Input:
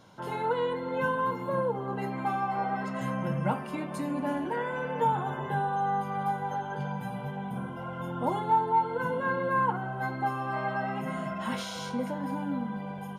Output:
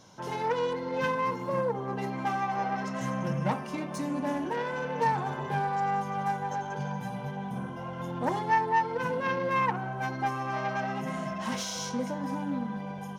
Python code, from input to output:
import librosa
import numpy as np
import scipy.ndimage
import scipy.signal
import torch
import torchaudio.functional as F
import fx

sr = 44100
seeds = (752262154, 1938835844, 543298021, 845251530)

y = fx.self_delay(x, sr, depth_ms=0.15)
y = fx.peak_eq(y, sr, hz=5900.0, db=13.0, octaves=0.45)
y = fx.notch(y, sr, hz=1400.0, q=19.0)